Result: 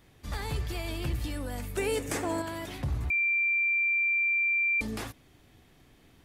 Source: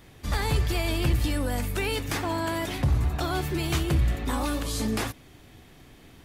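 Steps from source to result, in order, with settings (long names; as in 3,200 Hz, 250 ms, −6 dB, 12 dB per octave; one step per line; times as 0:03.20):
0:01.77–0:02.42: octave-band graphic EQ 250/500/2,000/4,000/8,000 Hz +4/+11/+4/−4/+12 dB
0:03.10–0:04.81: beep over 2,360 Hz −15.5 dBFS
level −8 dB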